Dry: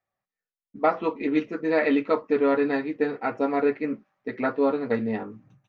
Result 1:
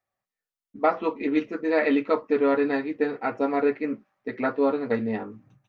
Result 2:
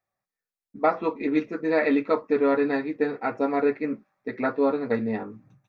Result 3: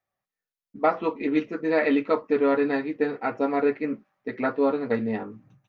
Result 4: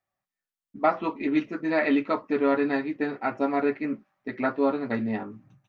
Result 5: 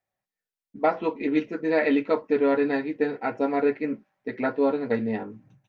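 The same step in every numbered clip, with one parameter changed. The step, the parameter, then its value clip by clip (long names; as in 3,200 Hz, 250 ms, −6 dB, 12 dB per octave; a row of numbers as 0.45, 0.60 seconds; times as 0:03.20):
notch filter, centre frequency: 160, 3,000, 8,000, 470, 1,200 Hertz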